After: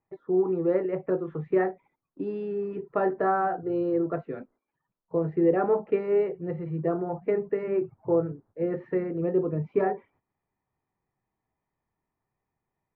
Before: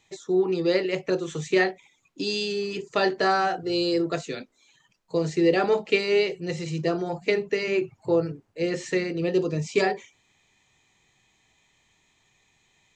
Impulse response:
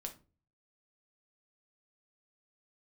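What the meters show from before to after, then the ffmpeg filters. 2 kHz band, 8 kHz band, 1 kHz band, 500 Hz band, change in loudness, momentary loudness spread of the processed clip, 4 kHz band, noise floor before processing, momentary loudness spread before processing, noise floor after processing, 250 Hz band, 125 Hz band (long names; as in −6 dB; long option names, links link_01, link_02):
−11.5 dB, below −35 dB, −2.0 dB, −1.5 dB, −2.5 dB, 8 LU, below −30 dB, −67 dBFS, 8 LU, below −85 dBFS, −1.5 dB, −1.5 dB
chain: -af "agate=range=-11dB:threshold=-55dB:ratio=16:detection=peak,lowpass=frequency=1400:width=0.5412,lowpass=frequency=1400:width=1.3066,volume=-1.5dB"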